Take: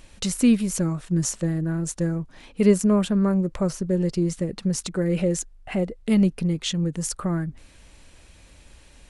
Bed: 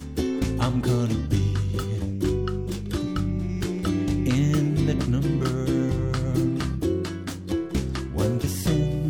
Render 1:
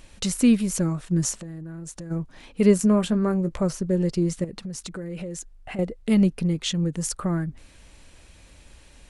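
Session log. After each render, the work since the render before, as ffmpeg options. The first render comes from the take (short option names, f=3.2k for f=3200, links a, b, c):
-filter_complex "[0:a]asplit=3[a][b][c];[a]afade=t=out:st=1.36:d=0.02[d];[b]acompressor=threshold=-33dB:ratio=12:attack=3.2:release=140:knee=1:detection=peak,afade=t=in:st=1.36:d=0.02,afade=t=out:st=2.1:d=0.02[e];[c]afade=t=in:st=2.1:d=0.02[f];[d][e][f]amix=inputs=3:normalize=0,asettb=1/sr,asplit=3[g][h][i];[g]atrim=end=2.774[j];[h]atrim=start=2.77:end=3.63,asetpts=PTS-STARTPTS,afade=t=in:d=0.004:c=qsin,afade=t=out:st=0.856:d=0.004:c=qsin,asplit=2[k][l];[l]adelay=18,volume=-10dB[m];[k][m]amix=inputs=2:normalize=0,atrim=end_sample=37926[n];[i]atrim=start=3.626[o];[j][n]acrossfade=d=0.004:c1=hsin:c2=qsin[p];[p][o]acrossfade=d=0.004:c1=qsin:c2=hsin,asettb=1/sr,asplit=3[q][r][s];[q]atrim=end=4.444[t];[r]atrim=start=4.44:end=5.79,asetpts=PTS-STARTPTS,afade=t=in:d=0.004:c=qsin,afade=t=out:st=1.346:d=0.004:c=qsin,acompressor=threshold=-32dB:ratio=4:attack=3.2:release=140:knee=1:detection=peak[u];[s]atrim=start=5.786[v];[t][u]acrossfade=d=0.004:c1=hsin:c2=qsin[w];[w][v]acrossfade=d=0.004:c1=qsin:c2=hsin"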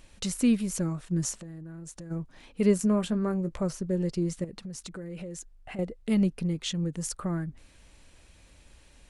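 -af "volume=-5.5dB"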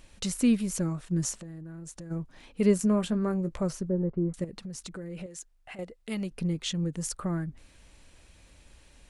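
-filter_complex "[0:a]asettb=1/sr,asplit=3[a][b][c];[a]atrim=end=3.894[d];[b]atrim=start=3.89:end=4.34,asetpts=PTS-STARTPTS,afade=t=in:d=0.004:c=qsin,afade=t=out:st=0.446:d=0.004:c=qsin,lowpass=f=1.3k:w=0.5412,lowpass=f=1.3k:w=1.3066[e];[c]atrim=start=4.336[f];[d][e]acrossfade=d=0.004:c1=hsin:c2=qsin[g];[g][f]acrossfade=d=0.004:c1=qsin:c2=hsin,asettb=1/sr,asplit=3[h][i][j];[h]atrim=end=5.264[k];[i]atrim=start=5.26:end=6.31,asetpts=PTS-STARTPTS,afade=t=in:d=0.004:c=qsin,afade=t=out:st=1.046:d=0.004:c=qsin,lowshelf=f=470:g=-11.5[l];[j]atrim=start=6.306[m];[k][l]acrossfade=d=0.004:c1=hsin:c2=qsin[n];[n][m]acrossfade=d=0.004:c1=qsin:c2=hsin"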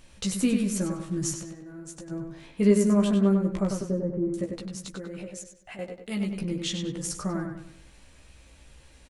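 -filter_complex "[0:a]asplit=2[a][b];[b]adelay=15,volume=-4dB[c];[a][c]amix=inputs=2:normalize=0,asplit=2[d][e];[e]adelay=97,lowpass=f=4.6k:p=1,volume=-5dB,asplit=2[f][g];[g]adelay=97,lowpass=f=4.6k:p=1,volume=0.41,asplit=2[h][i];[i]adelay=97,lowpass=f=4.6k:p=1,volume=0.41,asplit=2[j][k];[k]adelay=97,lowpass=f=4.6k:p=1,volume=0.41,asplit=2[l][m];[m]adelay=97,lowpass=f=4.6k:p=1,volume=0.41[n];[f][h][j][l][n]amix=inputs=5:normalize=0[o];[d][o]amix=inputs=2:normalize=0"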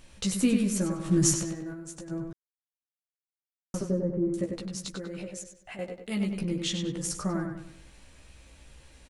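-filter_complex "[0:a]asplit=3[a][b][c];[a]afade=t=out:st=1.04:d=0.02[d];[b]acontrast=72,afade=t=in:st=1.04:d=0.02,afade=t=out:st=1.73:d=0.02[e];[c]afade=t=in:st=1.73:d=0.02[f];[d][e][f]amix=inputs=3:normalize=0,asettb=1/sr,asplit=3[g][h][i];[g]atrim=end=4.734[j];[h]atrim=start=4.73:end=5.31,asetpts=PTS-STARTPTS,afade=t=in:d=0.004:c=qsin,afade=t=out:st=0.576:d=0.004:c=qsin,equalizer=f=4.7k:w=1.5:g=5[k];[i]atrim=start=5.306[l];[j][k]acrossfade=d=0.004:c1=hsin:c2=qsin[m];[m][l]acrossfade=d=0.004:c1=qsin:c2=hsin,asplit=3[n][o][p];[n]atrim=end=2.33,asetpts=PTS-STARTPTS,afade=t=out:st=2.326:d=0.004:c=hsin[q];[o]atrim=start=2.33:end=3.74,asetpts=PTS-STARTPTS,volume=0[r];[p]atrim=start=3.74,asetpts=PTS-STARTPTS,afade=t=in:d=0.004:c=hsin[s];[q][r][s]concat=n=3:v=0:a=1"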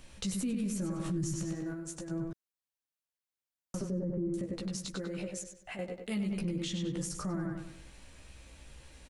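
-filter_complex "[0:a]acrossover=split=280[a][b];[b]acompressor=threshold=-36dB:ratio=4[c];[a][c]amix=inputs=2:normalize=0,alimiter=level_in=3dB:limit=-24dB:level=0:latency=1:release=56,volume=-3dB"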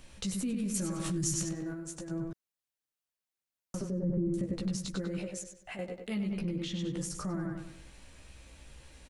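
-filter_complex "[0:a]asettb=1/sr,asplit=3[a][b][c];[a]atrim=end=0.744[d];[b]atrim=start=0.74:end=1.49,asetpts=PTS-STARTPTS,afade=t=in:d=0.004:c=qsin,afade=t=out:st=0.746:d=0.004:c=qsin,highshelf=f=2k:g=10[e];[c]atrim=start=1.486[f];[d][e]acrossfade=d=0.004:c1=hsin:c2=qsin[g];[g][f]acrossfade=d=0.004:c1=qsin:c2=hsin,asettb=1/sr,asplit=3[h][i][j];[h]atrim=end=4.034[k];[i]atrim=start=4.03:end=5.19,asetpts=PTS-STARTPTS,afade=t=in:d=0.004:c=qsin,afade=t=out:st=1.156:d=0.004:c=qsin,bass=f=250:g=6,treble=f=4k:g=0[l];[j]atrim=start=5.186[m];[k][l]acrossfade=d=0.004:c1=hsin:c2=qsin[n];[n][m]acrossfade=d=0.004:c1=qsin:c2=hsin,asettb=1/sr,asplit=3[o][p][q];[o]atrim=end=6.084[r];[p]atrim=start=6.08:end=6.79,asetpts=PTS-STARTPTS,afade=t=in:d=0.004:c=qsin,afade=t=out:st=0.706:d=0.004:c=qsin,equalizer=f=8.3k:t=o:w=0.91:g=-9.5[s];[q]atrim=start=6.786[t];[r][s]acrossfade=d=0.004:c1=hsin:c2=qsin[u];[u][t]acrossfade=d=0.004:c1=qsin:c2=hsin"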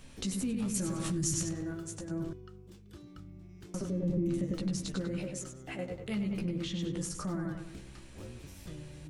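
-filter_complex "[1:a]volume=-23.5dB[a];[0:a][a]amix=inputs=2:normalize=0"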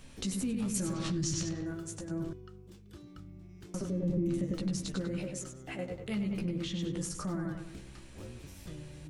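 -filter_complex "[0:a]asettb=1/sr,asplit=3[a][b][c];[a]atrim=end=0.934[d];[b]atrim=start=0.93:end=1.66,asetpts=PTS-STARTPTS,afade=t=in:d=0.004:c=qsin,afade=t=out:st=0.726:d=0.004:c=qsin,lowpass=f=4.6k:t=q:w=1.7[e];[c]atrim=start=1.656[f];[d][e]acrossfade=d=0.004:c1=hsin:c2=qsin[g];[g][f]acrossfade=d=0.004:c1=qsin:c2=hsin"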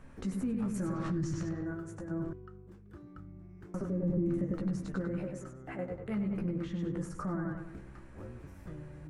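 -af "highshelf=f=2.3k:t=q:w=1.5:g=-13.5"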